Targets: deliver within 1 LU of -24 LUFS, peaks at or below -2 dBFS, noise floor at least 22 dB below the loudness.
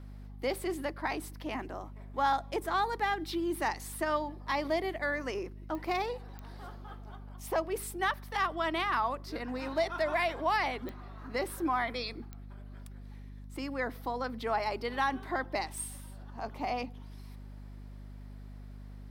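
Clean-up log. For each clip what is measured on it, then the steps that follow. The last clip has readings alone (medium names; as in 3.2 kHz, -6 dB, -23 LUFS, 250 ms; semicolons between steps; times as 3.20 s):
clicks found 5; hum 50 Hz; highest harmonic 250 Hz; hum level -44 dBFS; loudness -33.5 LUFS; peak level -18.5 dBFS; loudness target -24.0 LUFS
-> de-click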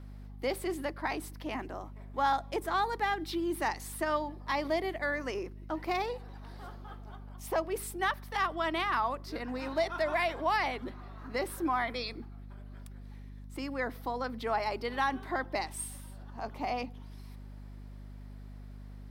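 clicks found 0; hum 50 Hz; highest harmonic 250 Hz; hum level -44 dBFS
-> hum notches 50/100/150/200/250 Hz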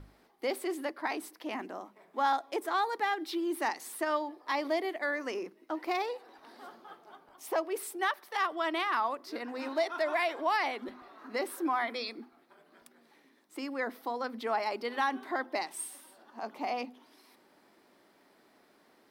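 hum not found; loudness -33.5 LUFS; peak level -19.0 dBFS; loudness target -24.0 LUFS
-> trim +9.5 dB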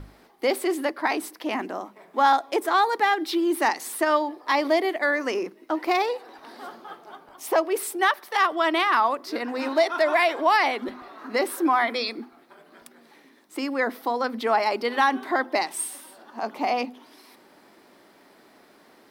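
loudness -24.0 LUFS; peak level -9.5 dBFS; noise floor -55 dBFS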